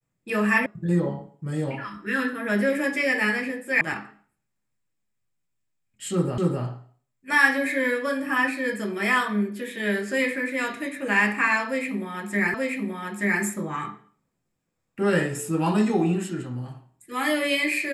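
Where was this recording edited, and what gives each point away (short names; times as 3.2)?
0.66 sound cut off
3.81 sound cut off
6.38 repeat of the last 0.26 s
12.54 repeat of the last 0.88 s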